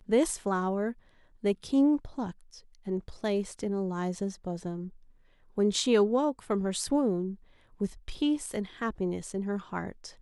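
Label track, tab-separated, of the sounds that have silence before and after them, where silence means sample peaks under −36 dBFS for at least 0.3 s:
1.440000	2.310000	sound
2.870000	4.880000	sound
5.580000	7.340000	sound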